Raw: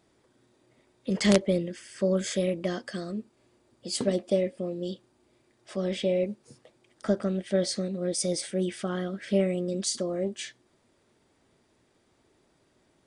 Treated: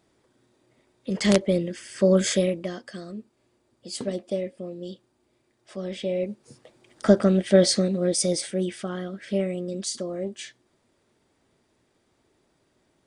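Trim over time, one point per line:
1.09 s 0 dB
2.29 s +8 dB
2.72 s -3 dB
5.94 s -3 dB
7.11 s +9 dB
7.70 s +9 dB
8.97 s -1 dB

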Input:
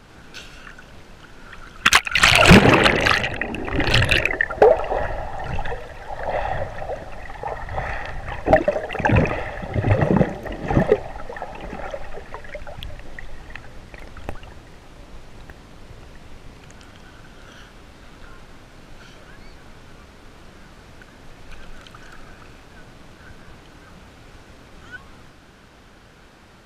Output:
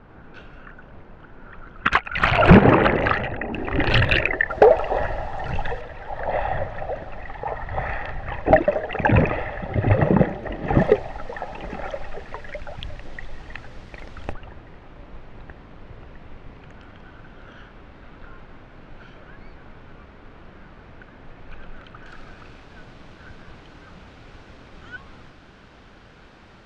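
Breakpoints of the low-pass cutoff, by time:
1.5 kHz
from 3.53 s 2.9 kHz
from 4.50 s 5.2 kHz
from 5.81 s 3 kHz
from 10.78 s 5.5 kHz
from 14.33 s 2.4 kHz
from 22.06 s 4.5 kHz

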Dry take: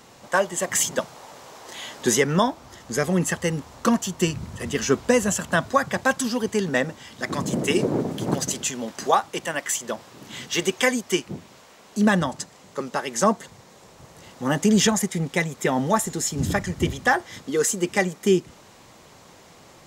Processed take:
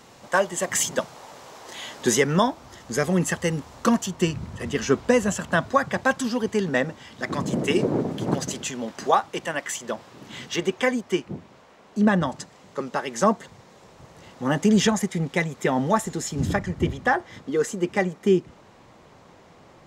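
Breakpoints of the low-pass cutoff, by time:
low-pass 6 dB/octave
9.5 kHz
from 4.06 s 3.9 kHz
from 10.56 s 1.7 kHz
from 12.23 s 3.8 kHz
from 16.56 s 1.8 kHz

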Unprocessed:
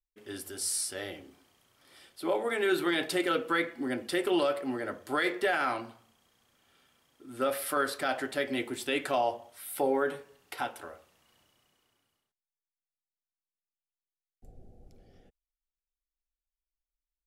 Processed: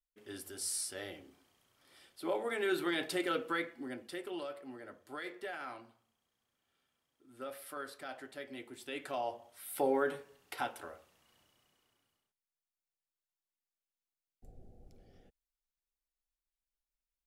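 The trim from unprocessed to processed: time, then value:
3.43 s -5.5 dB
4.32 s -14.5 dB
8.64 s -14.5 dB
9.84 s -3 dB

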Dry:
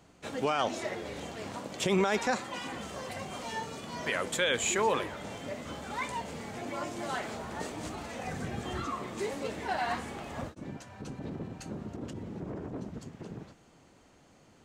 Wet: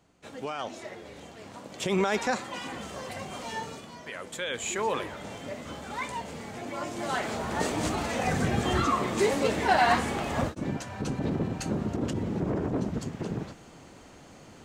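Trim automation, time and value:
1.48 s -5.5 dB
2.04 s +1.5 dB
3.70 s +1.5 dB
4.05 s -8.5 dB
5.11 s +1 dB
6.73 s +1 dB
7.74 s +10 dB

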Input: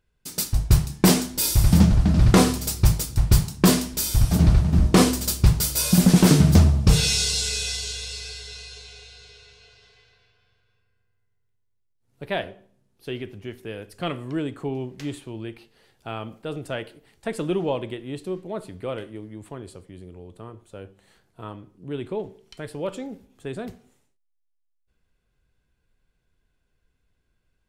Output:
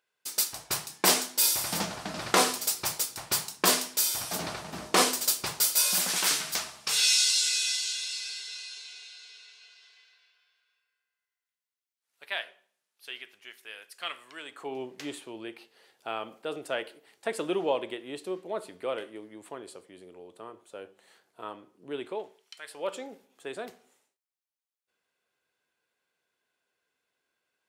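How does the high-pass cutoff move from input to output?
5.65 s 630 Hz
6.27 s 1.4 kHz
14.40 s 1.4 kHz
14.80 s 420 Hz
22.01 s 420 Hz
22.61 s 1.5 kHz
22.89 s 500 Hz

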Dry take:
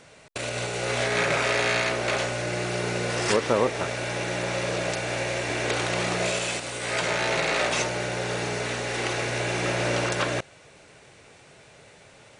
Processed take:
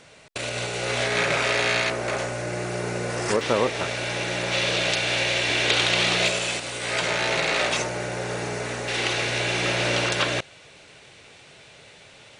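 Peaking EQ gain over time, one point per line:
peaking EQ 3.4 kHz 1.3 oct
+3.5 dB
from 1.90 s -5.5 dB
from 3.41 s +6 dB
from 4.52 s +13 dB
from 6.28 s +4 dB
from 7.77 s -3.5 dB
from 8.88 s +8 dB

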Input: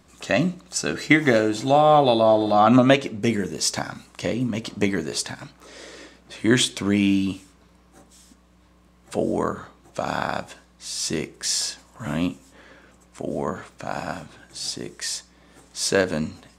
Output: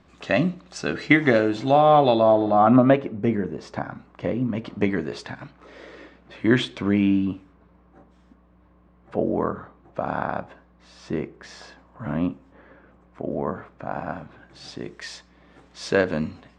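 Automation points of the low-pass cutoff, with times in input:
2.05 s 3.4 kHz
2.64 s 1.4 kHz
4.09 s 1.4 kHz
4.95 s 2.4 kHz
6.83 s 2.4 kHz
7.28 s 1.5 kHz
14.04 s 1.5 kHz
14.90 s 3 kHz

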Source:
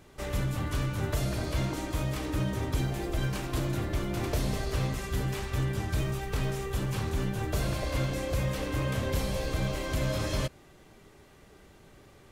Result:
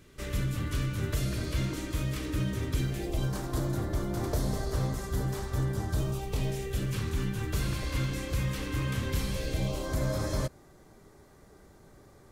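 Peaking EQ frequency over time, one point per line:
peaking EQ -12.5 dB 0.76 oct
2.92 s 790 Hz
3.34 s 2.6 kHz
5.87 s 2.6 kHz
7.13 s 650 Hz
9.32 s 650 Hz
9.94 s 2.8 kHz

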